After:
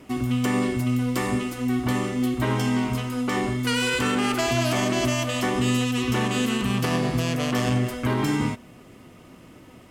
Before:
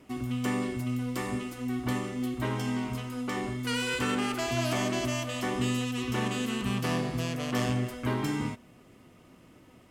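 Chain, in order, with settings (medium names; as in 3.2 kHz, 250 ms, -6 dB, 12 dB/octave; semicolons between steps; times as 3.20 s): peak limiter -22 dBFS, peak gain reduction 5 dB; trim +8 dB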